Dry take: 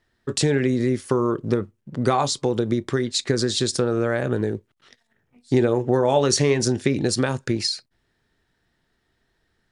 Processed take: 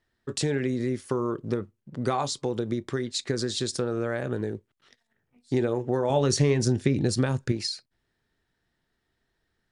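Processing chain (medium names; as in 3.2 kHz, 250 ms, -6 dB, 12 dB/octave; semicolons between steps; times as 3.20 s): 6.10–7.52 s: bass shelf 190 Hz +11 dB; trim -6.5 dB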